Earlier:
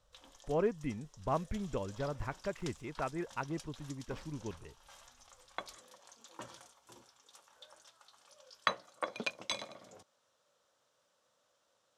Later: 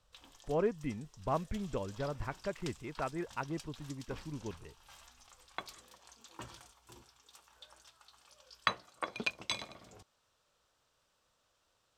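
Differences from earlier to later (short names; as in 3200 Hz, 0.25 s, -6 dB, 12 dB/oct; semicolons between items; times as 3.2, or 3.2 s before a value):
background: remove speaker cabinet 160–8700 Hz, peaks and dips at 380 Hz -3 dB, 550 Hz +7 dB, 2600 Hz -4 dB, 4600 Hz -3 dB, 8200 Hz -7 dB; master: add LPF 6500 Hz 12 dB/oct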